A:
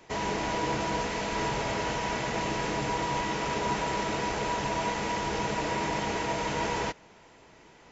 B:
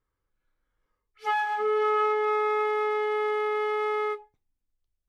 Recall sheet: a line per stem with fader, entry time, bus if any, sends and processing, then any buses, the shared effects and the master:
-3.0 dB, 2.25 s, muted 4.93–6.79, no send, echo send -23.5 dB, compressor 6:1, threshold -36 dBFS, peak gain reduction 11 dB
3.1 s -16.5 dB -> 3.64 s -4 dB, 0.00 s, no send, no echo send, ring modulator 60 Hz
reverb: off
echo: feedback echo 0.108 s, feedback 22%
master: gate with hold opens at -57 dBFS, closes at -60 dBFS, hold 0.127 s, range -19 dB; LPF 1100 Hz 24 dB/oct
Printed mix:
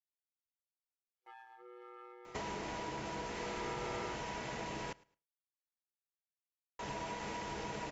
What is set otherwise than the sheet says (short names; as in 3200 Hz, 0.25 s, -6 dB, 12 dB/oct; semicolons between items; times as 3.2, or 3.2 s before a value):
stem B -16.5 dB -> -26.5 dB; master: missing LPF 1100 Hz 24 dB/oct